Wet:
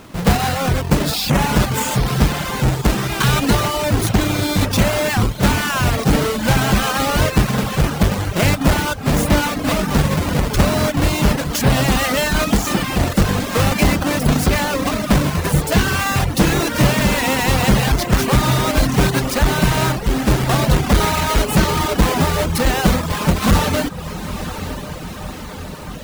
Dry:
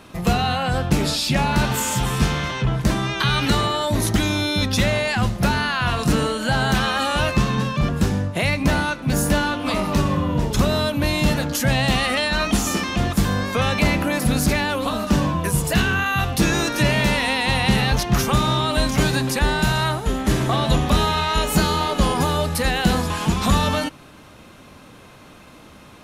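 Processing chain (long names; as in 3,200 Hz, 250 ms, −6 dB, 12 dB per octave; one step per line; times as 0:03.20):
each half-wave held at its own peak
feedback delay with all-pass diffusion 951 ms, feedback 66%, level −11.5 dB
reverb reduction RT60 0.71 s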